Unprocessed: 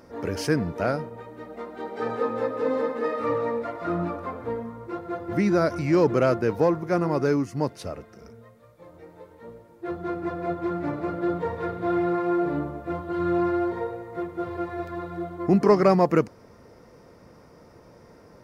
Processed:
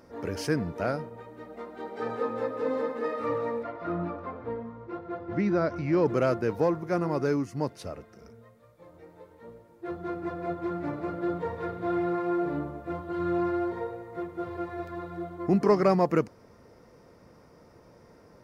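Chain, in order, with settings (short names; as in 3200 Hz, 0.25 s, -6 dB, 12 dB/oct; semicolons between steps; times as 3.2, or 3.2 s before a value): 3.63–6.06 air absorption 150 m; gain -4 dB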